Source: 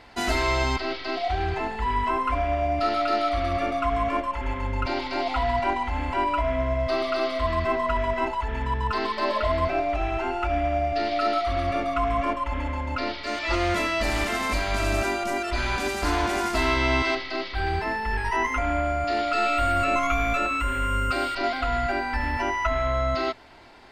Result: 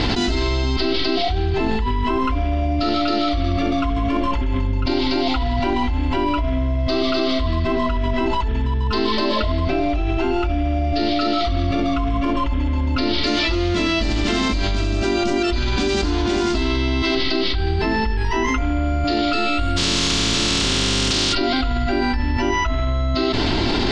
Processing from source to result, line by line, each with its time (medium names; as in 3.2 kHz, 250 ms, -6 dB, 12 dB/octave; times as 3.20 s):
19.76–21.32 s: spectral contrast reduction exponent 0.17
whole clip: Bessel low-pass 4.3 kHz, order 6; high-order bell 1.1 kHz -12 dB 2.6 oct; level flattener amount 100%; trim +4.5 dB